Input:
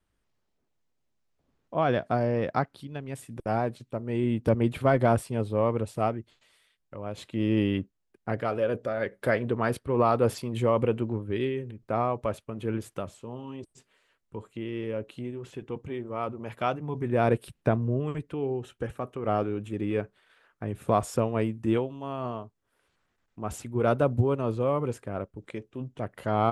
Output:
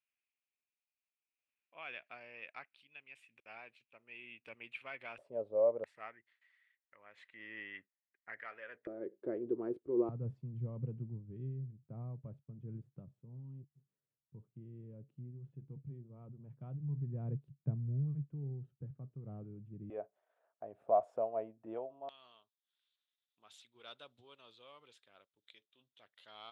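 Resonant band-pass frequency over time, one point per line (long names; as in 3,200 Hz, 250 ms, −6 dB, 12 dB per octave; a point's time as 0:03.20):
resonant band-pass, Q 7.2
2,500 Hz
from 0:05.18 580 Hz
from 0:05.84 1,900 Hz
from 0:08.87 350 Hz
from 0:10.09 140 Hz
from 0:19.90 660 Hz
from 0:22.09 3,600 Hz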